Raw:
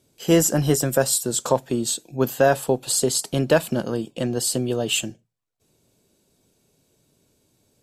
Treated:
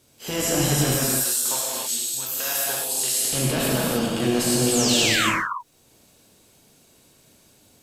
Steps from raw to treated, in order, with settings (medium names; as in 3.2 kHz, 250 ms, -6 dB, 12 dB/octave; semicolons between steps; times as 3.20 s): spectral contrast reduction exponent 0.69; 0.94–3.25 s: pre-emphasis filter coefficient 0.97; transient shaper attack -10 dB, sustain +5 dB; peak limiter -21.5 dBFS, peak gain reduction 16.5 dB; 4.71–5.31 s: painted sound fall 930–8500 Hz -31 dBFS; gated-style reverb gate 330 ms flat, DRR -5 dB; trim +3 dB